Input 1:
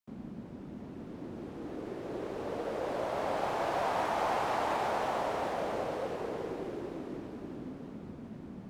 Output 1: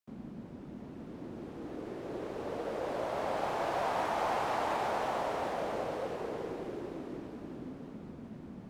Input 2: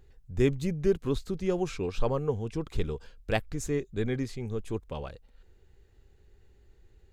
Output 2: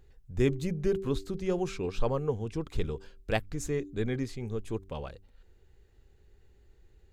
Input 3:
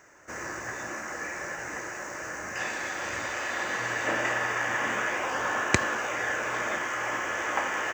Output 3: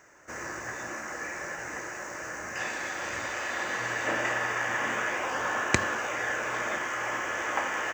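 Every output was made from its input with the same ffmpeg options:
-af "bandreject=frequency=96.83:width_type=h:width=4,bandreject=frequency=193.66:width_type=h:width=4,bandreject=frequency=290.49:width_type=h:width=4,bandreject=frequency=387.32:width_type=h:width=4,volume=-1dB"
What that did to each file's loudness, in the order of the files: −1.0, −1.5, −1.0 LU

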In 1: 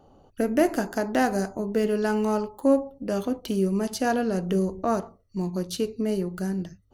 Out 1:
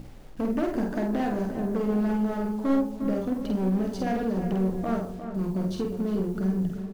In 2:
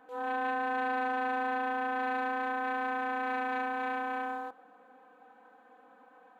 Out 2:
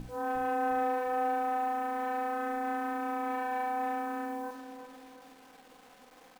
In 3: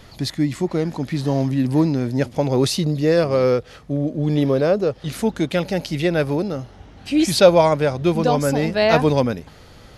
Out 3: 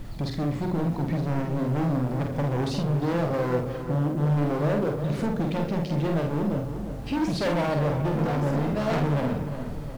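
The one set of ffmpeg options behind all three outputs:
-filter_complex "[0:a]aemphasis=mode=reproduction:type=riaa,asplit=2[link_01][link_02];[link_02]aecho=0:1:81|162|243:0.188|0.0546|0.0158[link_03];[link_01][link_03]amix=inputs=2:normalize=0,asoftclip=type=hard:threshold=-15dB,aeval=exprs='val(0)+0.0355*(sin(2*PI*60*n/s)+sin(2*PI*2*60*n/s)/2+sin(2*PI*3*60*n/s)/3+sin(2*PI*4*60*n/s)/4+sin(2*PI*5*60*n/s)/5)':channel_layout=same,bandreject=frequency=60:width_type=h:width=6,bandreject=frequency=120:width_type=h:width=6,bandreject=frequency=180:width_type=h:width=6,bandreject=frequency=240:width_type=h:width=6,bandreject=frequency=300:width_type=h:width=6,bandreject=frequency=360:width_type=h:width=6,bandreject=frequency=420:width_type=h:width=6,bandreject=frequency=480:width_type=h:width=6,alimiter=limit=-18.5dB:level=0:latency=1:release=89,acrusher=bits=8:mix=0:aa=0.000001,equalizer=frequency=69:width_type=o:width=0.8:gain=-14.5,asplit=2[link_04][link_05];[link_05]adelay=48,volume=-4dB[link_06];[link_04][link_06]amix=inputs=2:normalize=0,asplit=2[link_07][link_08];[link_08]adelay=354,lowpass=frequency=2200:poles=1,volume=-9dB,asplit=2[link_09][link_10];[link_10]adelay=354,lowpass=frequency=2200:poles=1,volume=0.48,asplit=2[link_11][link_12];[link_12]adelay=354,lowpass=frequency=2200:poles=1,volume=0.48,asplit=2[link_13][link_14];[link_14]adelay=354,lowpass=frequency=2200:poles=1,volume=0.48,asplit=2[link_15][link_16];[link_16]adelay=354,lowpass=frequency=2200:poles=1,volume=0.48[link_17];[link_09][link_11][link_13][link_15][link_17]amix=inputs=5:normalize=0[link_18];[link_07][link_18]amix=inputs=2:normalize=0,volume=-3dB"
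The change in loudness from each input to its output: −1.5, 0.0, −7.0 LU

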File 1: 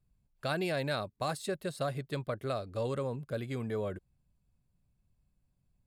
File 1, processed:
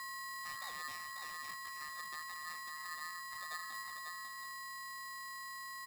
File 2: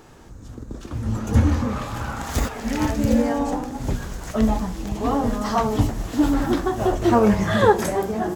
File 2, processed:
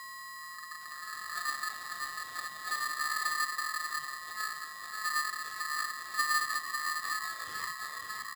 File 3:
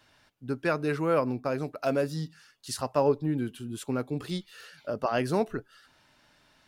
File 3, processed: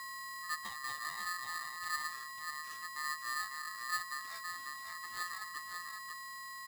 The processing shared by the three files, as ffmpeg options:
-filter_complex "[0:a]aemphasis=mode=production:type=bsi,acrossover=split=480|3100[link_01][link_02][link_03];[link_01]acompressor=threshold=-24dB:ratio=4[link_04];[link_02]acompressor=threshold=-35dB:ratio=4[link_05];[link_03]acompressor=threshold=-35dB:ratio=4[link_06];[link_04][link_05][link_06]amix=inputs=3:normalize=0,asplit=3[link_07][link_08][link_09];[link_07]bandpass=frequency=270:width_type=q:width=8,volume=0dB[link_10];[link_08]bandpass=frequency=2290:width_type=q:width=8,volume=-6dB[link_11];[link_09]bandpass=frequency=3010:width_type=q:width=8,volume=-9dB[link_12];[link_10][link_11][link_12]amix=inputs=3:normalize=0,aeval=exprs='val(0)+0.00794*sin(2*PI*430*n/s)':channel_layout=same,asplit=2[link_13][link_14];[link_14]aecho=0:1:545:0.531[link_15];[link_13][link_15]amix=inputs=2:normalize=0,aeval=exprs='val(0)*sgn(sin(2*PI*1500*n/s))':channel_layout=same"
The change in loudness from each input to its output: −8.0, −12.5, −10.0 LU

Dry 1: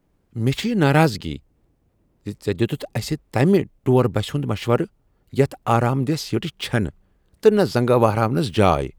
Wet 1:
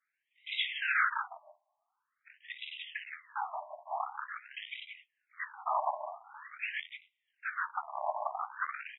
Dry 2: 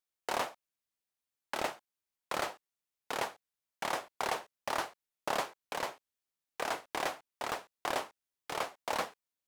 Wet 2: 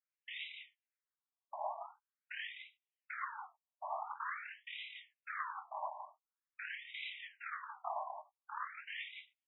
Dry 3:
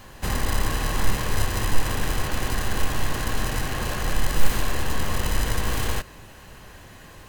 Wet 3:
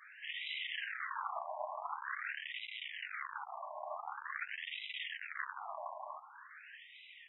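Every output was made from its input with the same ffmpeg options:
-filter_complex "[0:a]highpass=frequency=46:poles=1,afftfilt=real='re*lt(hypot(re,im),0.631)':imag='im*lt(hypot(re,im),0.631)':win_size=1024:overlap=0.75,lowshelf=frequency=190:width_type=q:width=3:gain=13.5,asplit=2[link_01][link_02];[link_02]aecho=0:1:40.82|172:0.355|0.501[link_03];[link_01][link_03]amix=inputs=2:normalize=0,flanger=delay=19:depth=4.5:speed=0.55,afftfilt=real='hypot(re,im)*cos(2*PI*random(0))':imag='hypot(re,im)*sin(2*PI*random(1))':win_size=512:overlap=0.75,aresample=16000,asoftclip=type=tanh:threshold=-21.5dB,aresample=44100,asubboost=boost=9.5:cutoff=62,volume=19dB,asoftclip=hard,volume=-19dB,asplit=2[link_04][link_05];[link_05]adelay=13,volume=-10.5dB[link_06];[link_04][link_06]amix=inputs=2:normalize=0,afftfilt=real='re*between(b*sr/1024,790*pow(2800/790,0.5+0.5*sin(2*PI*0.46*pts/sr))/1.41,790*pow(2800/790,0.5+0.5*sin(2*PI*0.46*pts/sr))*1.41)':imag='im*between(b*sr/1024,790*pow(2800/790,0.5+0.5*sin(2*PI*0.46*pts/sr))/1.41,790*pow(2800/790,0.5+0.5*sin(2*PI*0.46*pts/sr))*1.41)':win_size=1024:overlap=0.75,volume=7dB"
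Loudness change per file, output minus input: −16.0, −7.5, −15.0 LU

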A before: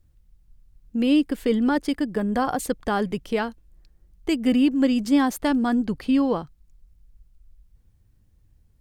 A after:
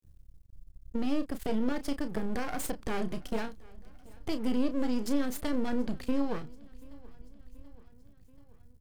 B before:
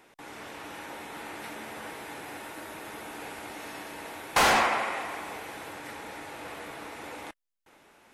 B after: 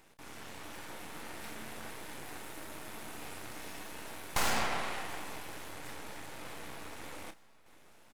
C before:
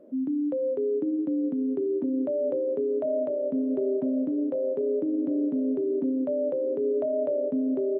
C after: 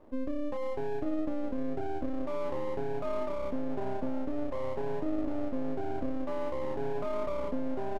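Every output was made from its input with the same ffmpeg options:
-filter_complex "[0:a]bass=frequency=250:gain=7,treble=frequency=4000:gain=5,acompressor=threshold=-25dB:ratio=2,aeval=exprs='max(val(0),0)':channel_layout=same,asplit=2[link_01][link_02];[link_02]adelay=32,volume=-10dB[link_03];[link_01][link_03]amix=inputs=2:normalize=0,asplit=2[link_04][link_05];[link_05]aecho=0:1:732|1464|2196|2928:0.0631|0.0372|0.022|0.013[link_06];[link_04][link_06]amix=inputs=2:normalize=0,volume=-2.5dB"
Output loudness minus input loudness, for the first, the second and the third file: −10.5, −8.5, −8.0 LU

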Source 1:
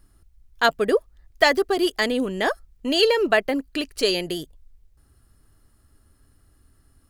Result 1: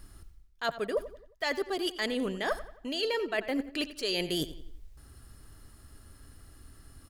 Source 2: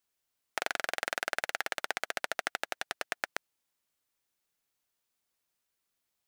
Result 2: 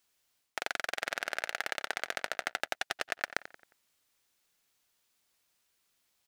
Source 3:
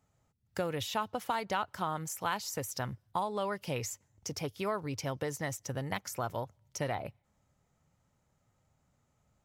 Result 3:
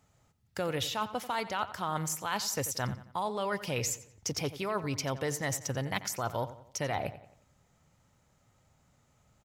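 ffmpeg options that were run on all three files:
-filter_complex "[0:a]equalizer=frequency=3900:width=0.45:gain=3.5,areverse,acompressor=threshold=-34dB:ratio=12,areverse,asplit=2[link_01][link_02];[link_02]adelay=89,lowpass=frequency=4500:poles=1,volume=-14dB,asplit=2[link_03][link_04];[link_04]adelay=89,lowpass=frequency=4500:poles=1,volume=0.45,asplit=2[link_05][link_06];[link_06]adelay=89,lowpass=frequency=4500:poles=1,volume=0.45,asplit=2[link_07][link_08];[link_08]adelay=89,lowpass=frequency=4500:poles=1,volume=0.45[link_09];[link_01][link_03][link_05][link_07][link_09]amix=inputs=5:normalize=0,volume=5.5dB"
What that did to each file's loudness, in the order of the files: −10.5, −0.5, +2.5 LU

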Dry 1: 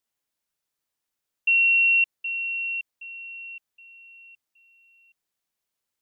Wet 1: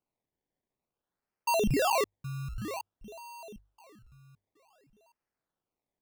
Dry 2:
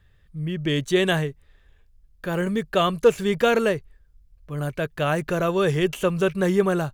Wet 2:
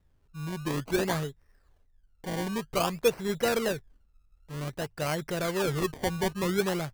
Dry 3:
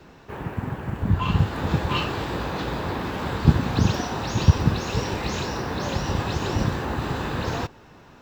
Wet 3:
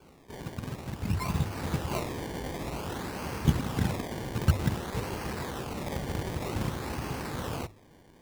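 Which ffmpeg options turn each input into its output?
-af "acrusher=samples=23:mix=1:aa=0.000001:lfo=1:lforange=23:lforate=0.53,bandreject=frequency=50:width_type=h:width=6,bandreject=frequency=100:width_type=h:width=6,volume=-7.5dB"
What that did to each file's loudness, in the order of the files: −11.0, −7.5, −8.0 LU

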